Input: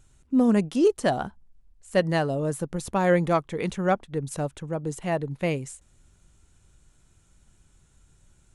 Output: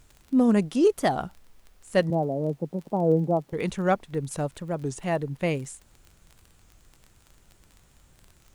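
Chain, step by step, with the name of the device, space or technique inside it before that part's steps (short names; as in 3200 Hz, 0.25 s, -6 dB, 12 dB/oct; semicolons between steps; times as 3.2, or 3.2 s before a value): 2.1–3.53 elliptic band-pass 150–810 Hz, stop band 40 dB; warped LP (record warp 33 1/3 rpm, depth 160 cents; crackle 26/s -37 dBFS; pink noise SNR 37 dB)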